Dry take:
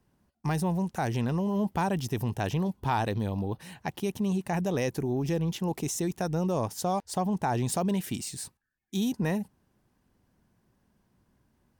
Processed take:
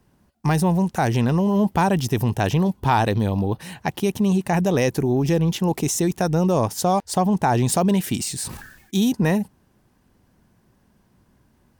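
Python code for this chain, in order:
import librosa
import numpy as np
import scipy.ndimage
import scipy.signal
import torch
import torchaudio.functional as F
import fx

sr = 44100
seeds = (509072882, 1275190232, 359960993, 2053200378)

y = fx.sustainer(x, sr, db_per_s=64.0, at=(8.2, 8.99), fade=0.02)
y = y * 10.0 ** (9.0 / 20.0)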